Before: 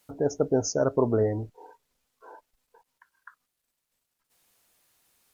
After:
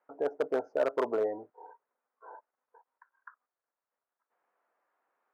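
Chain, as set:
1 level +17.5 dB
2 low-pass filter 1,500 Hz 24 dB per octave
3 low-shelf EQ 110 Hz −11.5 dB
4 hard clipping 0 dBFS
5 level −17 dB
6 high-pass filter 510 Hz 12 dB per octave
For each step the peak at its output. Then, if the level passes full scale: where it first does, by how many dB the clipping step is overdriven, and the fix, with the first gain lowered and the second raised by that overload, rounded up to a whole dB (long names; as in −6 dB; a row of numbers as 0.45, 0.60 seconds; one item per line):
+8.5, +8.5, +7.5, 0.0, −17.0, −16.5 dBFS
step 1, 7.5 dB
step 1 +9.5 dB, step 5 −9 dB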